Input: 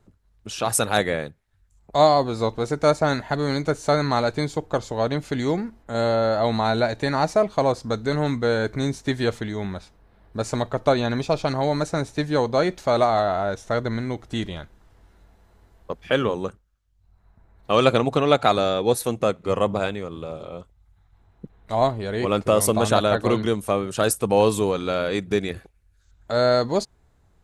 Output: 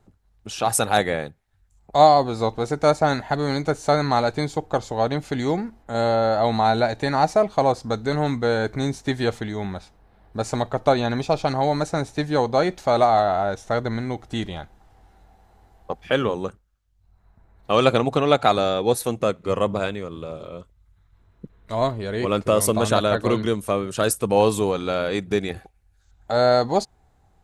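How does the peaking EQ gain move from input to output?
peaking EQ 780 Hz 0.21 oct
+7.5 dB
from 14.54 s +14.5 dB
from 16.04 s +2.5 dB
from 19.22 s -4.5 dB
from 20.46 s -11.5 dB
from 21.91 s -4.5 dB
from 24.36 s +4 dB
from 25.49 s +13 dB

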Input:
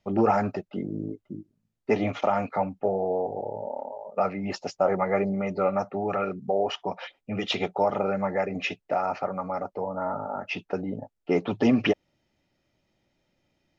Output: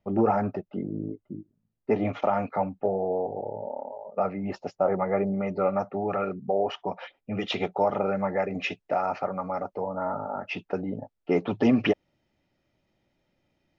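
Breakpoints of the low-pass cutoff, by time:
low-pass 6 dB/octave
1.1 kHz
from 2.05 s 2 kHz
from 2.86 s 1.2 kHz
from 5.40 s 2.1 kHz
from 7.36 s 3.3 kHz
from 8.51 s 5.7 kHz
from 10.19 s 3.7 kHz

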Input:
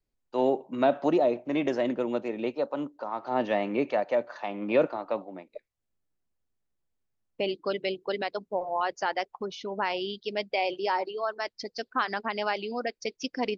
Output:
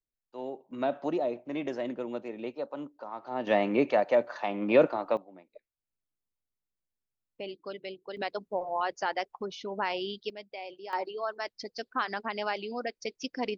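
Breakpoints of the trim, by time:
-13.5 dB
from 0.71 s -6.5 dB
from 3.47 s +2 dB
from 5.17 s -10 dB
from 8.17 s -2 dB
from 10.30 s -13.5 dB
from 10.93 s -3 dB

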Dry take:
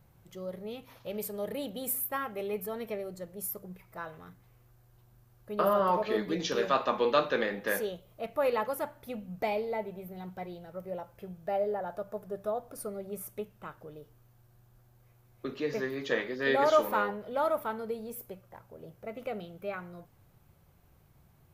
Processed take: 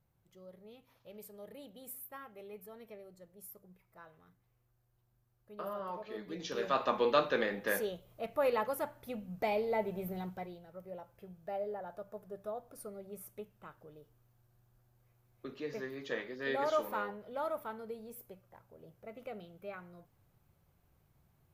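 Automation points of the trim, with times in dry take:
6.11 s -14.5 dB
6.86 s -2.5 dB
9.43 s -2.5 dB
10.10 s +4.5 dB
10.63 s -8 dB

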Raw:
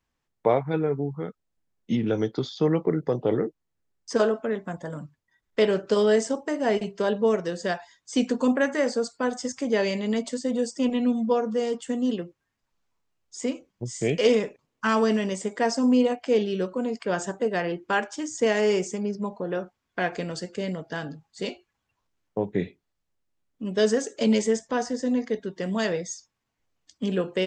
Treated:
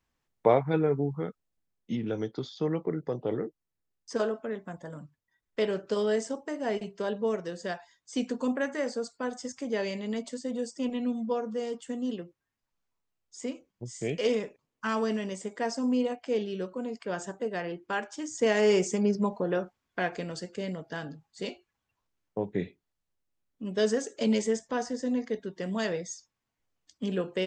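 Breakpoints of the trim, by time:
1.19 s -0.5 dB
1.92 s -7 dB
17.99 s -7 dB
19.11 s +3.5 dB
20.18 s -4.5 dB

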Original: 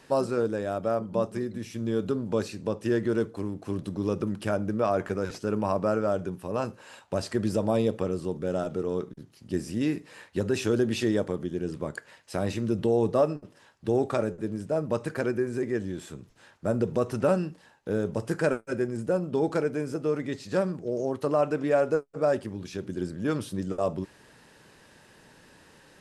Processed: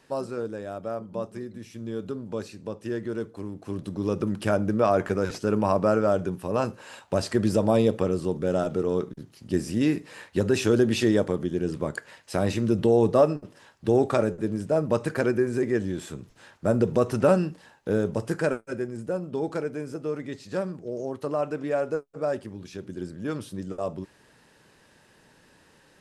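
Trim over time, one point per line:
3.17 s -5 dB
4.49 s +4 dB
17.89 s +4 dB
18.89 s -3 dB

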